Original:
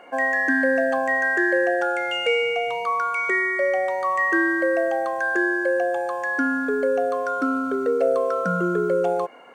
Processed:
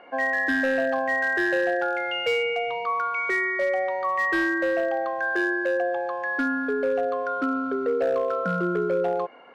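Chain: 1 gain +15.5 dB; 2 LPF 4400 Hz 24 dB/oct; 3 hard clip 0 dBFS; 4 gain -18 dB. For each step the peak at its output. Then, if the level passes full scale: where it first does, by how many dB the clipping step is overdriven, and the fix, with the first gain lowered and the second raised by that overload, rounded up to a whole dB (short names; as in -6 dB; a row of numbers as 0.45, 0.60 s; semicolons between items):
+6.5, +6.5, 0.0, -18.0 dBFS; step 1, 6.5 dB; step 1 +8.5 dB, step 4 -11 dB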